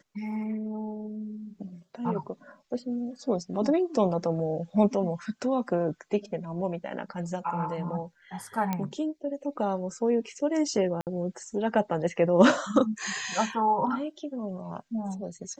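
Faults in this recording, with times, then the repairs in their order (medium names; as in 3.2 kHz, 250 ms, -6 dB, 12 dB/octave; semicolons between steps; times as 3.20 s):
8.73 s: pop -15 dBFS
11.01–11.07 s: dropout 58 ms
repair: de-click; interpolate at 11.01 s, 58 ms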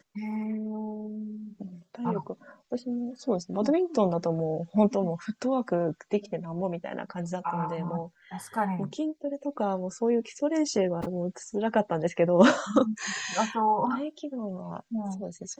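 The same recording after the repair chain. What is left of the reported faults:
nothing left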